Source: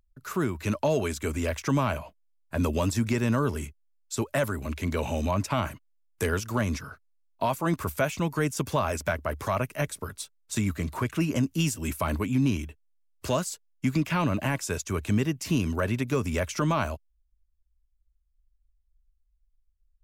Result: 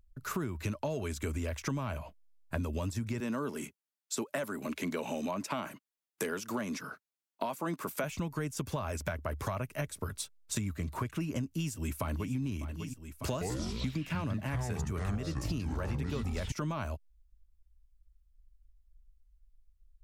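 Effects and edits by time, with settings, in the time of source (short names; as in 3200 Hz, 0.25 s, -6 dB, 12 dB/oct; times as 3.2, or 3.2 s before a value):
3.2–8.04 HPF 190 Hz 24 dB/oct
11.41–12.33 echo throw 0.6 s, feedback 65%, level -15.5 dB
13.32–16.52 echoes that change speed 87 ms, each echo -6 st, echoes 3
whole clip: low shelf 150 Hz +7 dB; compressor 6:1, threshold -32 dBFS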